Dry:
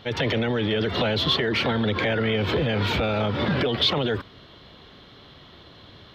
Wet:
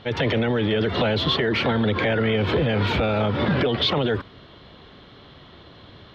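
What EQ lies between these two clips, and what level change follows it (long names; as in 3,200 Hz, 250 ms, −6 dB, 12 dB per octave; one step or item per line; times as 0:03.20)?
low-pass filter 3,100 Hz 6 dB per octave
+2.5 dB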